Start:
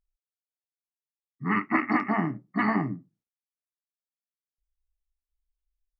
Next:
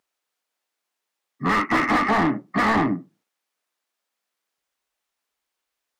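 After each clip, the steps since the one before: high-pass 160 Hz 12 dB/octave; treble shelf 4.2 kHz +7.5 dB; overdrive pedal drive 29 dB, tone 1.2 kHz, clips at -10 dBFS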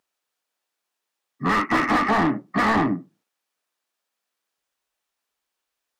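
band-stop 2.1 kHz, Q 23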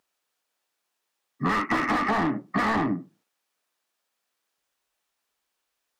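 compression 6:1, threshold -24 dBFS, peak gain reduction 7.5 dB; trim +2 dB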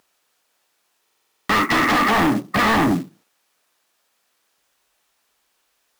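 sine folder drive 8 dB, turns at -14.5 dBFS; short-mantissa float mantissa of 2-bit; buffer glitch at 1.03 s, samples 2048, times 9

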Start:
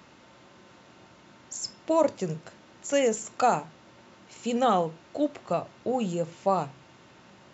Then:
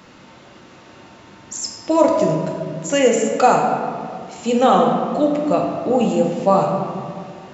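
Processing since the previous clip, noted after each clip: reverberation RT60 2.1 s, pre-delay 3 ms, DRR 0 dB; trim +7 dB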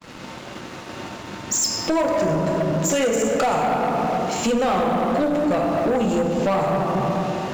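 expander -41 dBFS; compression 5:1, threshold -26 dBFS, peak gain reduction 16 dB; waveshaping leveller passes 3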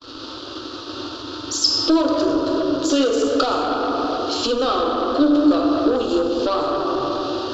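FFT filter 110 Hz 0 dB, 190 Hz -29 dB, 280 Hz +9 dB, 840 Hz -6 dB, 1.3 kHz +7 dB, 2.1 kHz -16 dB, 3.2 kHz +8 dB, 4.6 kHz +13 dB, 10 kHz -23 dB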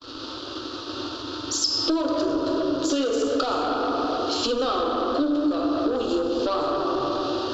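compression 4:1, threshold -19 dBFS, peak gain reduction 8 dB; trim -1.5 dB

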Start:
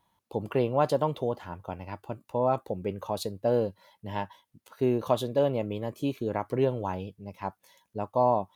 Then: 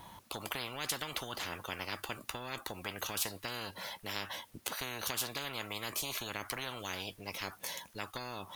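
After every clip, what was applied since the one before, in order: compression 2.5:1, threshold -29 dBFS, peak gain reduction 7.5 dB; spectrum-flattening compressor 10:1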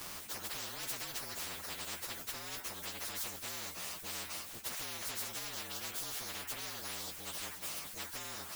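frequency axis rescaled in octaves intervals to 115%; spectrum-flattening compressor 4:1; trim +4.5 dB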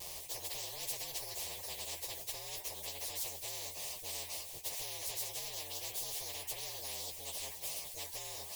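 vibrato 0.37 Hz 11 cents; static phaser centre 580 Hz, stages 4; trim +1.5 dB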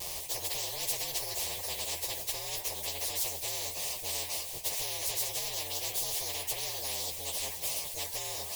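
reverberation RT60 3.5 s, pre-delay 31 ms, DRR 13.5 dB; trim +7 dB

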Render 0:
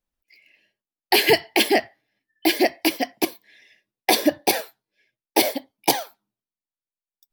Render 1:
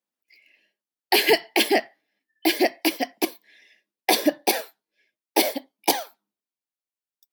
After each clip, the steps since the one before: high-pass 200 Hz 24 dB/octave; trim -1.5 dB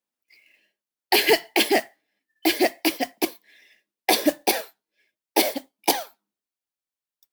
modulation noise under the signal 16 dB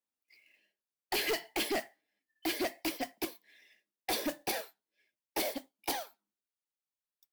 saturation -20.5 dBFS, distortion -7 dB; trim -7.5 dB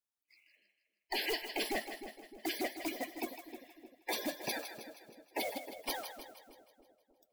coarse spectral quantiser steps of 30 dB; two-band feedback delay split 590 Hz, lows 305 ms, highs 158 ms, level -9 dB; trim -2.5 dB

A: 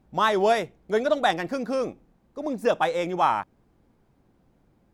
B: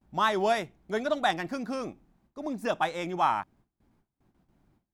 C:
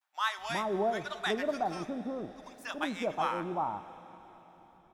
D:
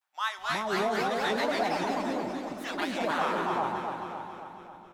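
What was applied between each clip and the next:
gate with hold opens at -53 dBFS; peaking EQ 490 Hz -9 dB 0.41 oct; trim -3 dB
bands offset in time highs, lows 370 ms, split 960 Hz; plate-style reverb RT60 4.3 s, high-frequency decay 1×, DRR 13 dB; trim -2.5 dB
on a send: feedback delay 272 ms, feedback 60%, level -5.5 dB; on the sum: ever faster or slower copies 275 ms, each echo +2 st, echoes 3

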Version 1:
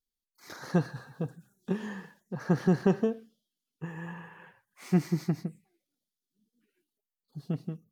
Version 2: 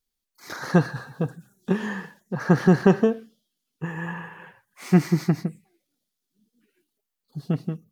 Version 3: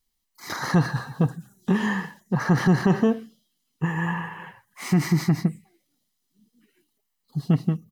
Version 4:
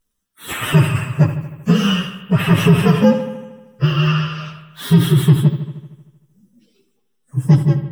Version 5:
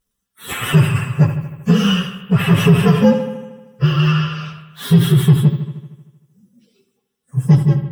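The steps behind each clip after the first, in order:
dynamic bell 1.5 kHz, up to +4 dB, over -49 dBFS, Q 0.85; trim +7.5 dB
comb 1 ms, depth 38%; peak limiter -15.5 dBFS, peak gain reduction 10.5 dB; trim +4.5 dB
frequency axis rescaled in octaves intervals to 125%; bucket-brigade echo 77 ms, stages 2048, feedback 64%, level -11.5 dB; loudness maximiser +12 dB; trim -1 dB
in parallel at -9 dB: hard clipper -12 dBFS, distortion -9 dB; on the sum: comb of notches 310 Hz; trim -1 dB

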